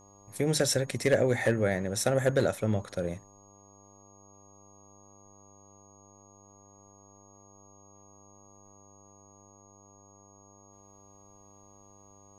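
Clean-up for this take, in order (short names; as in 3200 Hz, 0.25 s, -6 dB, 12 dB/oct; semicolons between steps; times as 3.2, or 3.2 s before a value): clip repair -15 dBFS; de-hum 99.7 Hz, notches 12; notch 6600 Hz, Q 30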